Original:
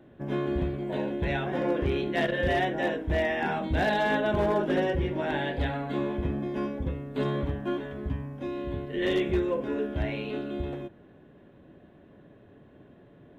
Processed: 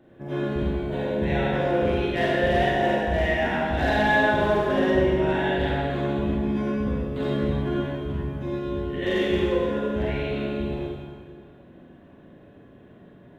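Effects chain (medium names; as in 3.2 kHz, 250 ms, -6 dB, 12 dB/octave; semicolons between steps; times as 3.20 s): Schroeder reverb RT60 1.7 s, combs from 33 ms, DRR -5.5 dB; trim -2 dB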